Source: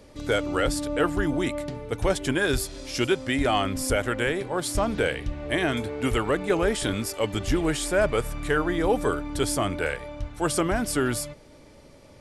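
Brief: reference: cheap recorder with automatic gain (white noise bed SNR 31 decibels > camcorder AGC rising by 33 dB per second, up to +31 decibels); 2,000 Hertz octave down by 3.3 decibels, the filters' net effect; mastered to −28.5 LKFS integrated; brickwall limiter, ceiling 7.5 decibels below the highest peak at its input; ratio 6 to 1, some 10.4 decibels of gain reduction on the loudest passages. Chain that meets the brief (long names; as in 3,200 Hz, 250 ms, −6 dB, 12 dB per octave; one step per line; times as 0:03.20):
parametric band 2,000 Hz −4.5 dB
downward compressor 6 to 1, threshold −30 dBFS
brickwall limiter −25.5 dBFS
white noise bed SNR 31 dB
camcorder AGC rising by 33 dB per second, up to +31 dB
level +7.5 dB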